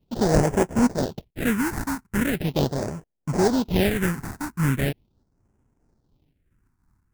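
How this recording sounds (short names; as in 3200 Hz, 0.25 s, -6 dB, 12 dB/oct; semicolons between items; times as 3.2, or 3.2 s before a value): aliases and images of a low sample rate 1200 Hz, jitter 20%; phasing stages 4, 0.4 Hz, lowest notch 510–3900 Hz; noise-modulated level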